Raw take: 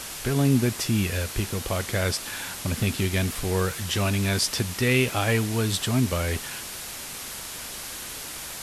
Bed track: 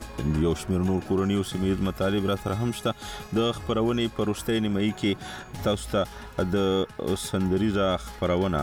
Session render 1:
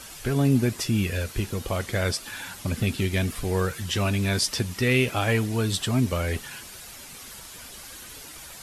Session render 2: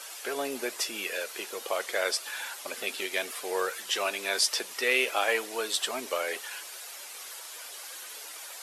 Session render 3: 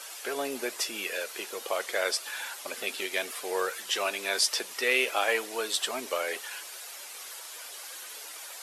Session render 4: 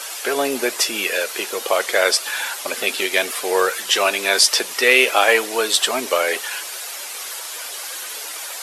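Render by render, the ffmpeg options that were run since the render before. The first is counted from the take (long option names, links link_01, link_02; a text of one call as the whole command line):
ffmpeg -i in.wav -af "afftdn=noise_reduction=9:noise_floor=-37" out.wav
ffmpeg -i in.wav -af "highpass=frequency=450:width=0.5412,highpass=frequency=450:width=1.3066" out.wav
ffmpeg -i in.wav -af anull out.wav
ffmpeg -i in.wav -af "volume=12dB,alimiter=limit=-1dB:level=0:latency=1" out.wav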